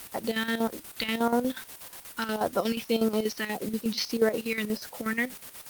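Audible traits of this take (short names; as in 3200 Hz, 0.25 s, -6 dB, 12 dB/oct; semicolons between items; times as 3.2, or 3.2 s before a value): phasing stages 2, 1.7 Hz, lowest notch 580–3000 Hz; a quantiser's noise floor 8-bit, dither triangular; chopped level 8.3 Hz, depth 65%, duty 60%; Opus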